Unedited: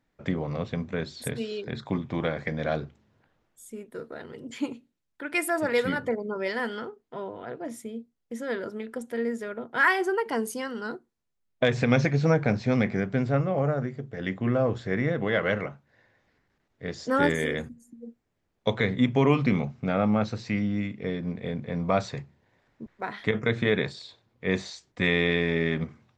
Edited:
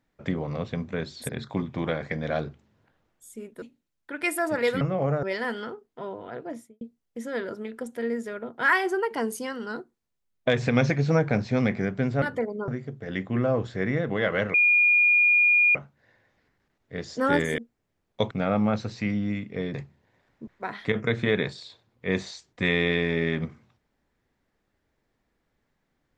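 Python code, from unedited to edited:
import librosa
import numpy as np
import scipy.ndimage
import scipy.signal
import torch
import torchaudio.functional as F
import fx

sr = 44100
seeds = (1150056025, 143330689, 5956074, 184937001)

y = fx.studio_fade_out(x, sr, start_s=7.62, length_s=0.34)
y = fx.edit(y, sr, fx.cut(start_s=1.29, length_s=0.36),
    fx.cut(start_s=3.98, length_s=0.75),
    fx.swap(start_s=5.92, length_s=0.46, other_s=13.37, other_length_s=0.42),
    fx.insert_tone(at_s=15.65, length_s=1.21, hz=2430.0, db=-16.0),
    fx.cut(start_s=17.48, length_s=0.57),
    fx.cut(start_s=18.78, length_s=1.01),
    fx.cut(start_s=21.22, length_s=0.91), tone=tone)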